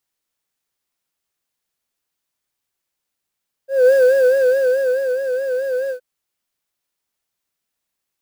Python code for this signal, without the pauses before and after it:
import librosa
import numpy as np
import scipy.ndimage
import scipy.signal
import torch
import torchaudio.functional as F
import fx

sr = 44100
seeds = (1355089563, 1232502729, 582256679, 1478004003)

y = fx.sub_patch_vibrato(sr, seeds[0], note=72, wave='triangle', wave2='triangle', interval_st=19, detune_cents=16, level2_db=-6, sub_db=-30.0, noise_db=-17, kind='highpass', cutoff_hz=390.0, q=5.5, env_oct=0.5, env_decay_s=0.27, env_sustain_pct=45, attack_ms=224.0, decay_s=1.28, sustain_db=-9.0, release_s=0.1, note_s=2.22, lfo_hz=4.7, vibrato_cents=83)